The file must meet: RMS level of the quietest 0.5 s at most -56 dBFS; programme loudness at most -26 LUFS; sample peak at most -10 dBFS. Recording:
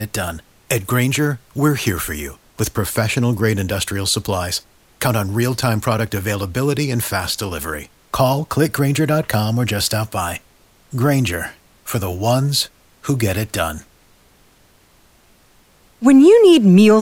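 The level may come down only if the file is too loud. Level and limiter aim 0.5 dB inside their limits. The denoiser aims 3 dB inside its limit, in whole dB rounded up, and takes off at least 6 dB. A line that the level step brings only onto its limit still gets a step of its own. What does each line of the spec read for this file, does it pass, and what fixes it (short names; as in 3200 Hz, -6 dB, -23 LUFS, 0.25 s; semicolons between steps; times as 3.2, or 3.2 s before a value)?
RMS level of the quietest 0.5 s -53 dBFS: fail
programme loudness -17.5 LUFS: fail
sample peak -3.0 dBFS: fail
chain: gain -9 dB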